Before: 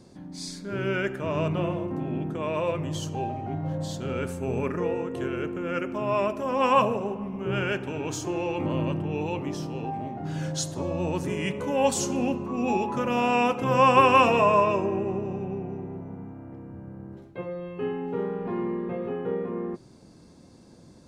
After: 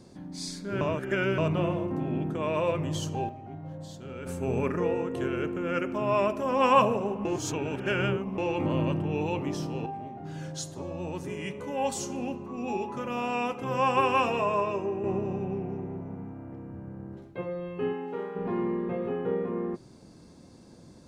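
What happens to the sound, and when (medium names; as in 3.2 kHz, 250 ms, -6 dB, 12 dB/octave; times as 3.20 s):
0.81–1.38 s: reverse
2.96–4.59 s: dip -10 dB, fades 0.33 s logarithmic
7.25–8.38 s: reverse
9.86–15.04 s: feedback comb 400 Hz, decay 0.16 s
15.54–17.30 s: loudspeaker Doppler distortion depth 0.14 ms
17.92–18.35 s: high-pass 300 Hz -> 960 Hz 6 dB/octave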